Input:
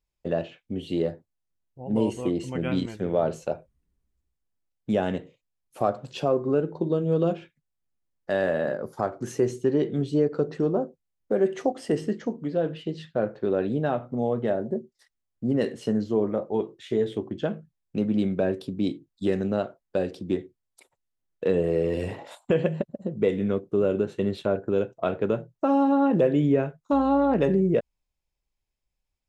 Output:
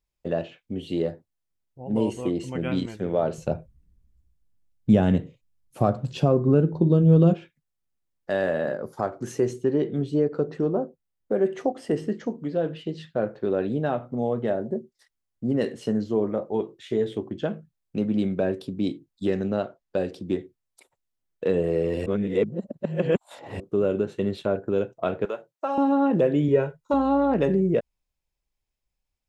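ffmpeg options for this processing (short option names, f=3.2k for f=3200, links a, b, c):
-filter_complex "[0:a]asettb=1/sr,asplit=3[a][b][c];[a]atrim=end=3.384[d];[b]atrim=start=3.38:end=7.34,asetpts=PTS-STARTPTS,afade=t=in:d=0.004:c=qsin,afade=t=out:st=3.956:d=0.004:c=qsin,bass=f=250:g=14,treble=f=4k:g=1[e];[c]atrim=start=7.336[f];[d][e]acrossfade=d=0.004:c1=hsin:c2=qsin[g];[g][f]acrossfade=d=0.004:c1=qsin:c2=hsin,asettb=1/sr,asplit=3[h][i][j];[h]atrim=end=9.534[k];[i]atrim=start=9.53:end=12.15,asetpts=PTS-STARTPTS,afade=t=in:d=0.004:c=qsin,afade=t=out:st=2.616:d=0.004:c=qsin,equalizer=f=6.6k:w=0.44:g=-4.5[l];[j]atrim=start=12.146[m];[k][l]acrossfade=d=0.004:c1=hsin:c2=qsin[n];[n][m]acrossfade=d=0.004:c1=qsin:c2=hsin,asettb=1/sr,asplit=3[o][p][q];[o]atrim=end=19.274[r];[p]atrim=start=19.27:end=19.98,asetpts=PTS-STARTPTS,afade=t=in:d=0.004:c=qsin,afade=t=out:st=0.706:d=0.004:c=qsin,lowpass=f=7.3k:w=0.5412,lowpass=f=7.3k:w=1.3066[s];[q]atrim=start=19.976[t];[r][s]acrossfade=d=0.004:c1=hsin:c2=qsin[u];[u][t]acrossfade=d=0.004:c1=qsin:c2=hsin,asettb=1/sr,asplit=3[v][w][x];[v]atrim=end=25.254[y];[w]atrim=start=25.25:end=25.78,asetpts=PTS-STARTPTS,afade=t=in:d=0.004:c=qsin,afade=t=out:st=0.526:d=0.004:c=qsin,highpass=610[z];[x]atrim=start=25.776[aa];[y][z]acrossfade=d=0.004:c1=hsin:c2=qsin[ab];[ab][aa]acrossfade=d=0.004:c1=qsin:c2=hsin,asettb=1/sr,asplit=3[ac][ad][ae];[ac]atrim=end=26.484[af];[ad]atrim=start=26.48:end=26.94,asetpts=PTS-STARTPTS,afade=t=in:d=0.004:c=qsin,afade=t=out:st=0.456:d=0.004:c=qsin,aecho=1:1:2.1:0.65,atrim=end_sample=20286[ag];[ae]atrim=start=26.936[ah];[af][ag]acrossfade=d=0.004:c1=hsin:c2=qsin[ai];[ai][ah]acrossfade=d=0.004:c1=qsin:c2=hsin,asplit=3[aj][ak][al];[aj]atrim=end=22.062[am];[ak]atrim=start=22.058:end=23.602,asetpts=PTS-STARTPTS,areverse[an];[al]atrim=start=23.598[ao];[am][an]acrossfade=d=0.004:c1=hsin:c2=hsin[ap];[ap][ao]acrossfade=d=0.004:c1=hsin:c2=hsin"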